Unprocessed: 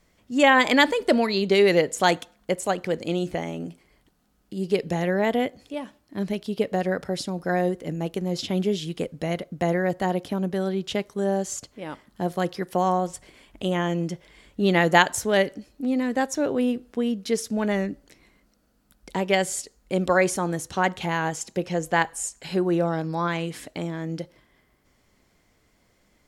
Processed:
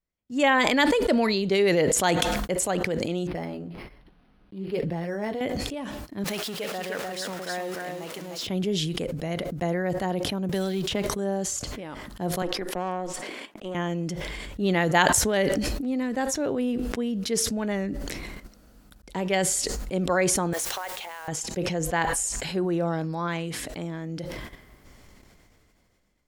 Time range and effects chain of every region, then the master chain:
0:03.27–0:05.41: flanger 1.2 Hz, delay 5.4 ms, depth 5.4 ms, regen −44% + linearly interpolated sample-rate reduction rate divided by 6×
0:06.24–0:08.47: converter with a step at zero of −32.5 dBFS + high-pass filter 960 Hz 6 dB per octave + single-tap delay 301 ms −3.5 dB
0:10.49–0:11.07: mu-law and A-law mismatch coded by mu + multiband upward and downward compressor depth 100%
0:12.42–0:13.75: high-pass filter 230 Hz 24 dB per octave + tube saturation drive 17 dB, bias 0.7 + high-shelf EQ 4,500 Hz −7.5 dB
0:20.53–0:21.28: high-pass filter 520 Hz 24 dB per octave + downward compressor 5 to 1, threshold −30 dBFS + bit-depth reduction 8 bits, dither triangular
whole clip: low-shelf EQ 81 Hz +7 dB; noise gate −55 dBFS, range −25 dB; level that may fall only so fast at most 20 dB per second; level −4.5 dB

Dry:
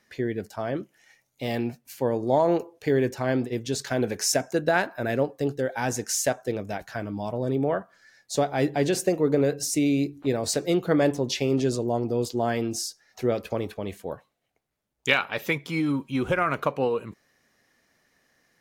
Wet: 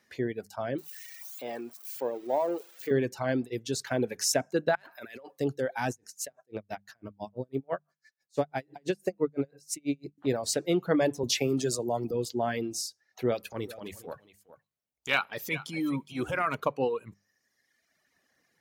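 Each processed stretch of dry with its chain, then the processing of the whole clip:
0:00.78–0:02.91: spike at every zero crossing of −22.5 dBFS + de-essing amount 80% + high-pass filter 420 Hz
0:04.75–0:05.39: high-pass filter 1,500 Hz 6 dB per octave + compressor whose output falls as the input rises −41 dBFS
0:05.90–0:10.18: parametric band 3,300 Hz −4 dB 0.2 octaves + tremolo with a sine in dB 6 Hz, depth 32 dB
0:11.23–0:12.11: parametric band 14,000 Hz +10.5 dB 1.8 octaves + multiband upward and downward compressor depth 40%
0:13.25–0:16.55: high-shelf EQ 4,100 Hz +6 dB + transient designer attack −10 dB, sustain 0 dB + single-tap delay 413 ms −13 dB
whole clip: mains-hum notches 50/100/150/200 Hz; reverb reduction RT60 1.3 s; high-pass filter 59 Hz; level −2.5 dB

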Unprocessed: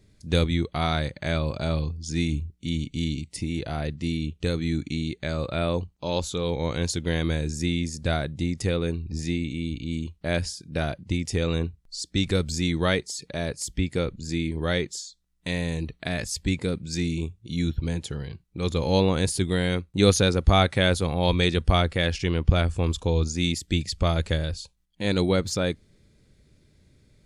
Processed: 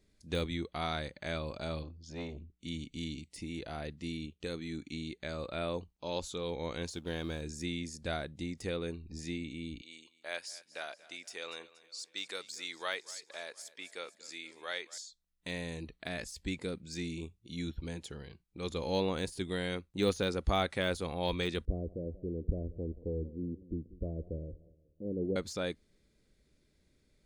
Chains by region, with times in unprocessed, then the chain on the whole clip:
0:01.83–0:02.59: high-frequency loss of the air 140 metres + saturating transformer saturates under 480 Hz
0:04.26–0:04.93: low-shelf EQ 71 Hz −9 dB + amplitude modulation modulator 78 Hz, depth 15%
0:06.93–0:07.42: mu-law and A-law mismatch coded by A + high-shelf EQ 9,700 Hz −5 dB + notch filter 2,000 Hz, Q 5.7
0:09.81–0:14.98: high-pass filter 760 Hz + repeating echo 236 ms, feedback 54%, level −19 dB
0:21.65–0:25.36: Butterworth low-pass 510 Hz + feedback echo with a swinging delay time 182 ms, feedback 42%, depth 118 cents, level −19 dB
whole clip: de-essing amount 65%; parametric band 110 Hz −10.5 dB 1.2 octaves; level −8.5 dB

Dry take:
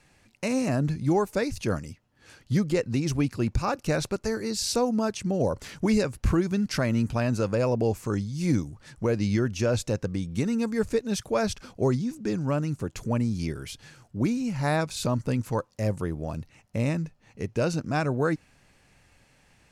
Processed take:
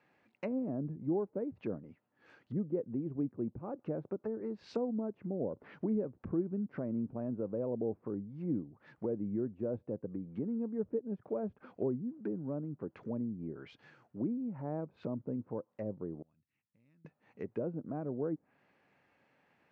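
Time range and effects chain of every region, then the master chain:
0:16.22–0:17.05: guitar amp tone stack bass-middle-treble 6-0-2 + downward compressor 3 to 1, threshold −59 dBFS
whole clip: low-pass filter 2,000 Hz 12 dB per octave; treble cut that deepens with the level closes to 440 Hz, closed at −24.5 dBFS; high-pass filter 230 Hz 12 dB per octave; level −6 dB

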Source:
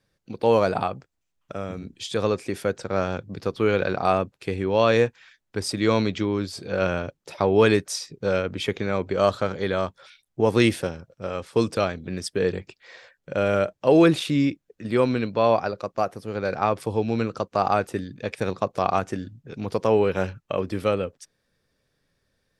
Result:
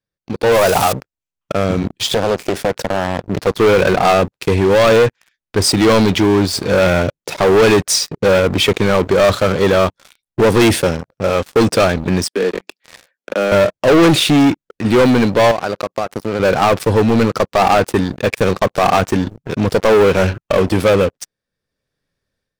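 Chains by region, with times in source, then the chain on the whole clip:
0:00.52–0:00.93: spike at every zero crossing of −19.5 dBFS + parametric band 220 Hz −8.5 dB 1.3 octaves + highs frequency-modulated by the lows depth 0.18 ms
0:01.96–0:03.47: high-shelf EQ 4,500 Hz −4.5 dB + downward compressor 4 to 1, threshold −28 dBFS + highs frequency-modulated by the lows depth 0.75 ms
0:12.24–0:13.52: Butterworth high-pass 190 Hz 72 dB per octave + downward compressor 1.5 to 1, threshold −48 dBFS
0:15.51–0:16.40: high-pass filter 130 Hz 6 dB per octave + downward compressor 16 to 1, threshold −30 dBFS
whole clip: leveller curve on the samples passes 5; automatic gain control; level −5.5 dB

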